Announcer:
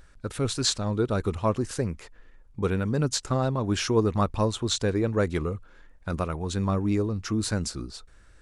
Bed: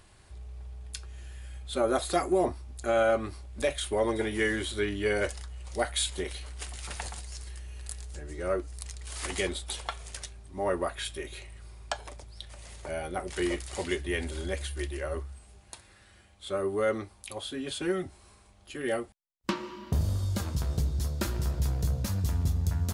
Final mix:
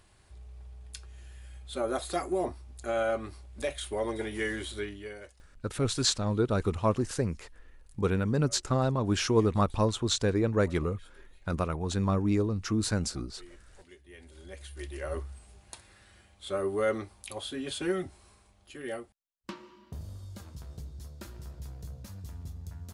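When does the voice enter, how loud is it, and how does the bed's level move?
5.40 s, -1.5 dB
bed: 4.77 s -4.5 dB
5.38 s -23.5 dB
13.98 s -23.5 dB
15.13 s -0.5 dB
18.01 s -0.5 dB
19.92 s -14 dB

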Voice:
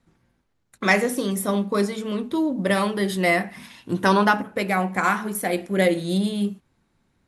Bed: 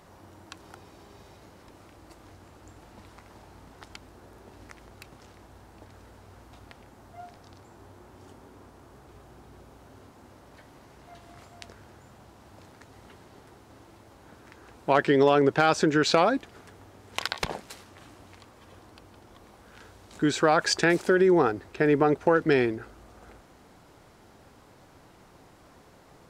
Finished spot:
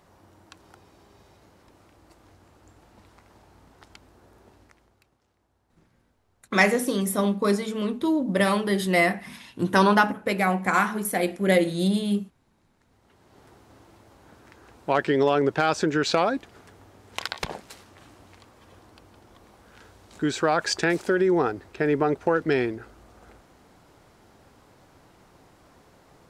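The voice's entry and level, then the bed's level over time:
5.70 s, -0.5 dB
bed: 4.48 s -4.5 dB
5.19 s -20 dB
12.71 s -20 dB
13.45 s -1 dB

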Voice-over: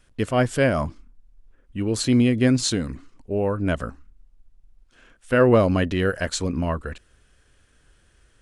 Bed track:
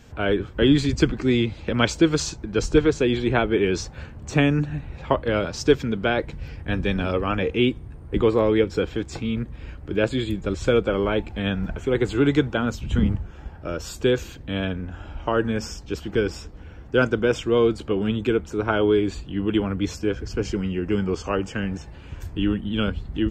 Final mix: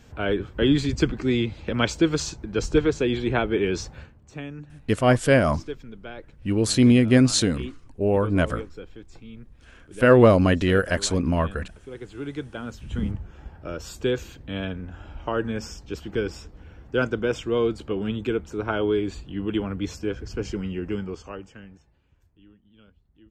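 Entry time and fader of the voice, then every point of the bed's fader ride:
4.70 s, +2.0 dB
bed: 3.95 s -2.5 dB
4.22 s -17 dB
11.98 s -17 dB
13.30 s -4 dB
20.84 s -4 dB
22.40 s -31.5 dB

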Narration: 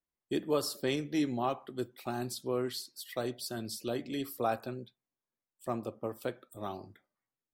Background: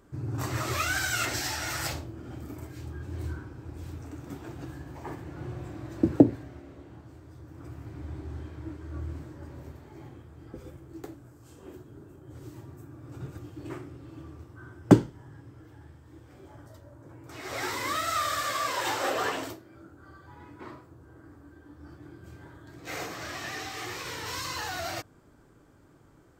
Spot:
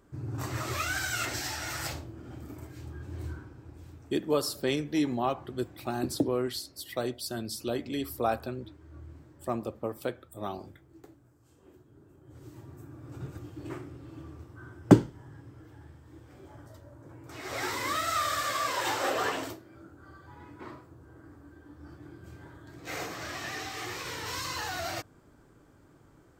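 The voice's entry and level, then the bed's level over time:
3.80 s, +3.0 dB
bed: 3.28 s -3 dB
4.15 s -11 dB
11.76 s -11 dB
12.85 s -0.5 dB

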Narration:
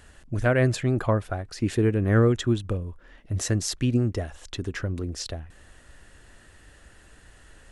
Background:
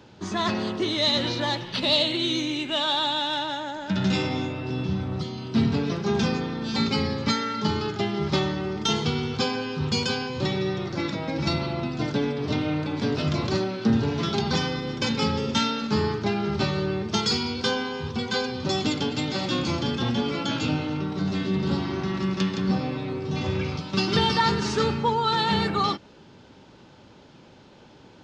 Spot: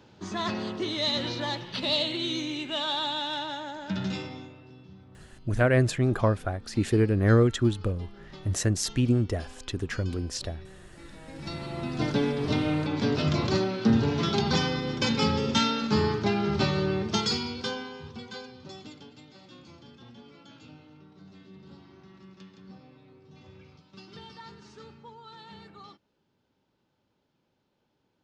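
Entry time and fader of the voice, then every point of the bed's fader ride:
5.15 s, -0.5 dB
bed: 3.93 s -5 dB
4.83 s -23 dB
10.97 s -23 dB
12.02 s -0.5 dB
17.02 s -0.5 dB
19.28 s -24.5 dB

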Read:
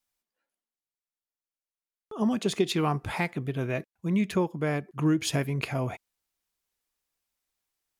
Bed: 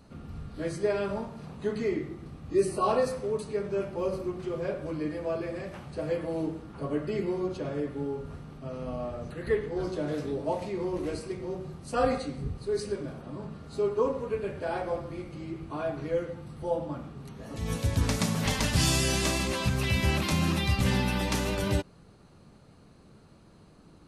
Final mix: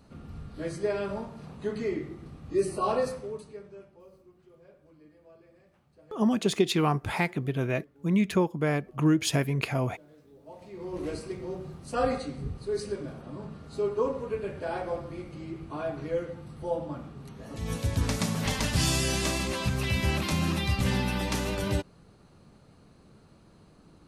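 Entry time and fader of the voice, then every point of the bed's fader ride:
4.00 s, +1.5 dB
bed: 3.08 s -1.5 dB
4.07 s -24 dB
10.30 s -24 dB
11.03 s -1 dB

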